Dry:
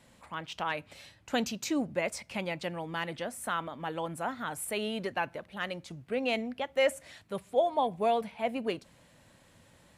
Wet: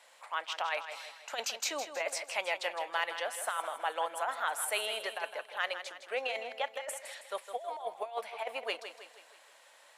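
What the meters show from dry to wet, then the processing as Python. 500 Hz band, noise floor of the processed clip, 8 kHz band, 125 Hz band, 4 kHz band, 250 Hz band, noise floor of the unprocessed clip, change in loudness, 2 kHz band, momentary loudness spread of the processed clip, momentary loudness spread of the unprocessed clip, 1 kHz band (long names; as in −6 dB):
−6.0 dB, −60 dBFS, +3.0 dB, below −35 dB, +1.5 dB, −22.0 dB, −61 dBFS, −2.5 dB, +1.0 dB, 7 LU, 12 LU, −2.0 dB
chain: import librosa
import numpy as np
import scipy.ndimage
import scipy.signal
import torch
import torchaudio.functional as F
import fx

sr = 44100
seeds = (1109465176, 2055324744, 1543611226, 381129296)

y = scipy.signal.sosfilt(scipy.signal.butter(4, 600.0, 'highpass', fs=sr, output='sos'), x)
y = fx.high_shelf(y, sr, hz=9500.0, db=-3.5)
y = fx.over_compress(y, sr, threshold_db=-34.0, ratio=-0.5)
y = fx.echo_feedback(y, sr, ms=160, feedback_pct=48, wet_db=-10)
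y = F.gain(torch.from_numpy(y), 1.5).numpy()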